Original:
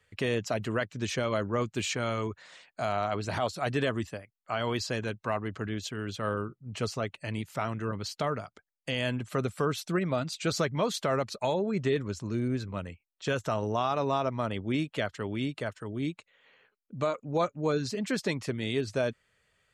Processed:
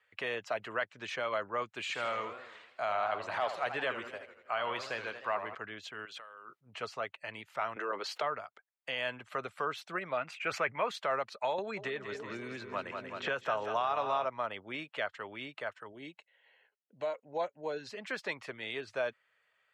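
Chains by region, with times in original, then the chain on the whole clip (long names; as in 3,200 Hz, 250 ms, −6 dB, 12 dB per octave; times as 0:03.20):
0:01.81–0:05.55: notch filter 5,500 Hz, Q 16 + feedback echo with a swinging delay time 80 ms, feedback 57%, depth 179 cents, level −9 dB
0:06.05–0:06.61: high-shelf EQ 3,200 Hz +7 dB + compressor whose output falls as the input rises −42 dBFS + high-pass filter 600 Hz 6 dB per octave
0:07.76–0:08.22: high-pass with resonance 380 Hz, resonance Q 1.8 + envelope flattener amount 70%
0:10.17–0:10.91: high shelf with overshoot 3,100 Hz −7.5 dB, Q 3 + level that may fall only so fast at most 91 dB per second
0:11.58–0:14.25: high-pass filter 52 Hz + echo with a time of its own for lows and highs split 420 Hz, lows 259 ms, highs 188 ms, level −9 dB + multiband upward and downward compressor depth 100%
0:15.92–0:17.87: parametric band 1,300 Hz −8.5 dB 0.59 octaves + notch comb filter 1,200 Hz
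whole clip: high-pass filter 99 Hz; three-way crossover with the lows and the highs turned down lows −20 dB, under 560 Hz, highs −16 dB, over 3,300 Hz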